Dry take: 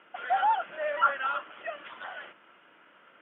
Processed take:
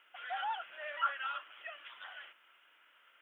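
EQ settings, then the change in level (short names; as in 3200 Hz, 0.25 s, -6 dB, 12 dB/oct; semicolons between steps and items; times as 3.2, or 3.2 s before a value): differentiator; +5.5 dB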